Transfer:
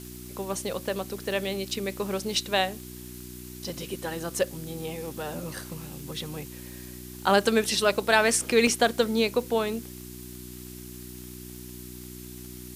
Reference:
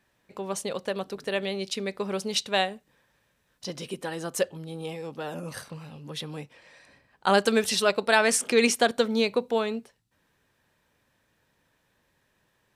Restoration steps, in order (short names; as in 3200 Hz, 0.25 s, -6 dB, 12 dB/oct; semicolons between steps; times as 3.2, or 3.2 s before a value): de-click; de-hum 61.4 Hz, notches 6; interpolate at 3.01/8.67, 1.2 ms; noise print and reduce 29 dB